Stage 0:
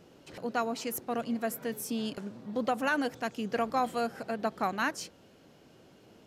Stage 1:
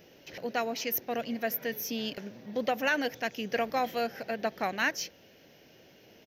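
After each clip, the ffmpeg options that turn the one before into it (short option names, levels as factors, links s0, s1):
-af "firequalizer=gain_entry='entry(270,0);entry(560,5);entry(1200,-4);entry(1800,10);entry(2600,9);entry(4200,5);entry(6000,11);entry(8900,-28);entry(13000,15)':delay=0.05:min_phase=1,volume=0.75"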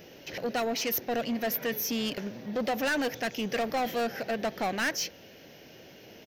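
-af "asoftclip=type=tanh:threshold=0.0266,volume=2.11"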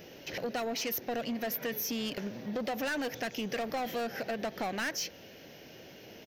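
-af "acompressor=threshold=0.0251:ratio=6"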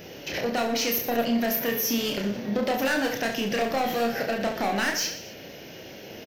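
-af "aecho=1:1:30|69|119.7|185.6|271.3:0.631|0.398|0.251|0.158|0.1,volume=2.11"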